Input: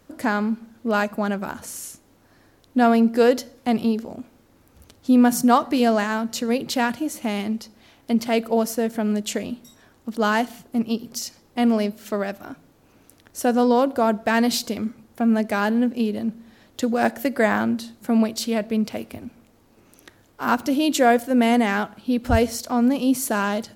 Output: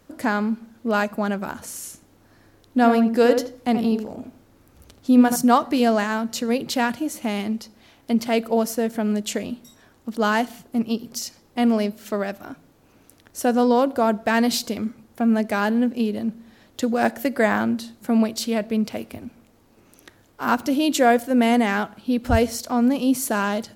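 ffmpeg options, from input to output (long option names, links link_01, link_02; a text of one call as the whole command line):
ffmpeg -i in.wav -filter_complex "[0:a]asettb=1/sr,asplit=3[link_01][link_02][link_03];[link_01]atrim=end=1.784[link_04];[link_02]atrim=start=1.78:end=5.36,asetpts=PTS-STARTPTS,afade=type=in:duration=0.004:curve=qsin,afade=type=out:start_time=3.576:duration=0.004:curve=qsin,asplit=2[link_05][link_06];[link_06]adelay=80,lowpass=frequency=1300:poles=1,volume=-6dB,asplit=2[link_07][link_08];[link_08]adelay=80,lowpass=frequency=1300:poles=1,volume=0.28,asplit=2[link_09][link_10];[link_10]adelay=80,lowpass=frequency=1300:poles=1,volume=0.28,asplit=2[link_11][link_12];[link_12]adelay=80,lowpass=frequency=1300:poles=1,volume=0.28[link_13];[link_05][link_07][link_09][link_11][link_13]amix=inputs=5:normalize=0,atrim=end_sample=157878[link_14];[link_03]atrim=start=5.356[link_15];[link_04][link_14]acrossfade=duration=0.004:curve1=hsin:curve2=qsin[link_16];[link_16][link_15]acrossfade=duration=0.004:curve1=qsin:curve2=hsin" out.wav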